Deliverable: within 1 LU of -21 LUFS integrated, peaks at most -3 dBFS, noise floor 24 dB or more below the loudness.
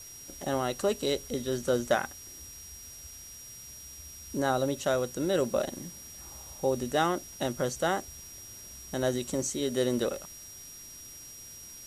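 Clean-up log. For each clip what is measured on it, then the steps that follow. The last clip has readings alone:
steady tone 5700 Hz; tone level -46 dBFS; noise floor -47 dBFS; noise floor target -55 dBFS; loudness -30.5 LUFS; peak -13.0 dBFS; loudness target -21.0 LUFS
-> notch 5700 Hz, Q 30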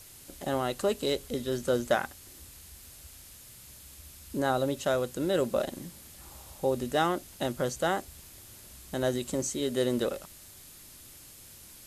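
steady tone none; noise floor -51 dBFS; noise floor target -55 dBFS
-> denoiser 6 dB, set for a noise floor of -51 dBFS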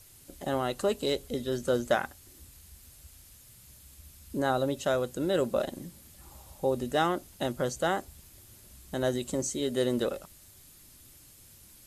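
noise floor -55 dBFS; loudness -30.5 LUFS; peak -13.0 dBFS; loudness target -21.0 LUFS
-> gain +9.5 dB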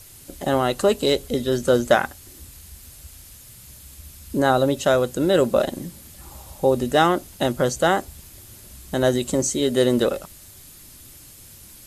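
loudness -21.0 LUFS; peak -3.5 dBFS; noise floor -45 dBFS

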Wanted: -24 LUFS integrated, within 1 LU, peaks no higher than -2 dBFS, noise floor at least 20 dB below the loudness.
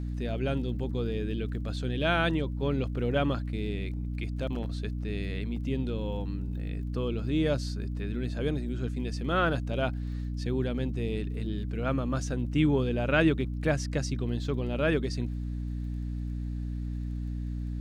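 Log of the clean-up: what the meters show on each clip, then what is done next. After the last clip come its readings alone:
ticks 23/s; hum 60 Hz; harmonics up to 300 Hz; hum level -31 dBFS; loudness -31.0 LUFS; peak -11.0 dBFS; loudness target -24.0 LUFS
-> de-click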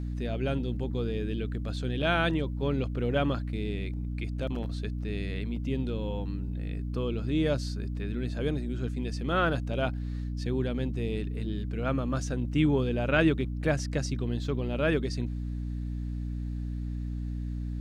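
ticks 0.056/s; hum 60 Hz; harmonics up to 300 Hz; hum level -31 dBFS
-> notches 60/120/180/240/300 Hz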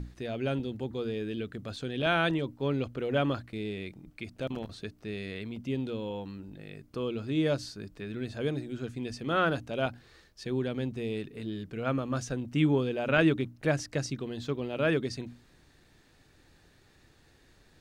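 hum none; loudness -32.0 LUFS; peak -12.0 dBFS; loudness target -24.0 LUFS
-> gain +8 dB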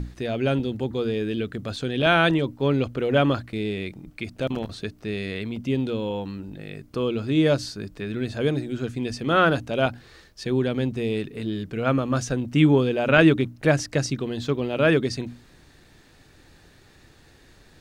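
loudness -24.0 LUFS; peak -4.0 dBFS; noise floor -54 dBFS

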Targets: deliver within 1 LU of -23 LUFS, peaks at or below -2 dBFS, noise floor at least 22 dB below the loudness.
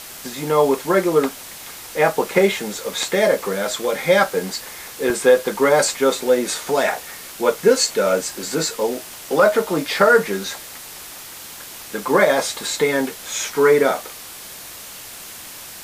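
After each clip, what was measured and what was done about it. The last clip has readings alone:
dropouts 1; longest dropout 1.2 ms; noise floor -37 dBFS; noise floor target -41 dBFS; loudness -19.0 LUFS; peak -3.0 dBFS; loudness target -23.0 LUFS
-> interpolate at 5.1, 1.2 ms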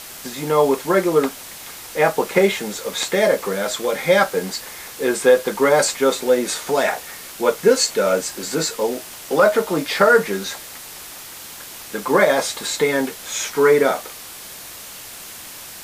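dropouts 0; noise floor -37 dBFS; noise floor target -41 dBFS
-> denoiser 6 dB, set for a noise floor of -37 dBFS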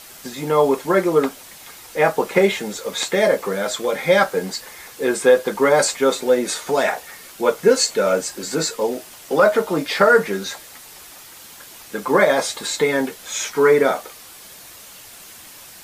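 noise floor -42 dBFS; loudness -19.0 LUFS; peak -3.0 dBFS; loudness target -23.0 LUFS
-> gain -4 dB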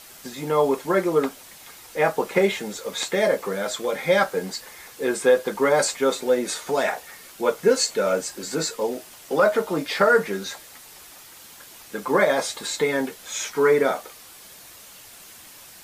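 loudness -23.0 LUFS; peak -7.0 dBFS; noise floor -46 dBFS

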